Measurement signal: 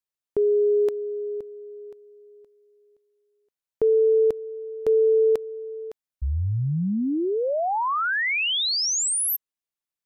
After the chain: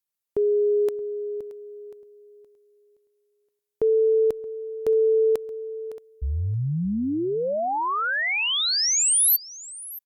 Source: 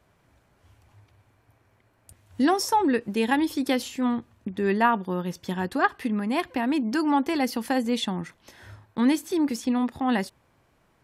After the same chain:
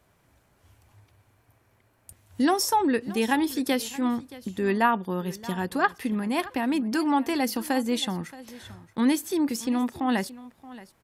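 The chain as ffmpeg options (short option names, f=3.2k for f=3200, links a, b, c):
-af "highshelf=f=8k:g=9.5,aecho=1:1:625:0.119,volume=-1dB" -ar 48000 -c:a libopus -b:a 128k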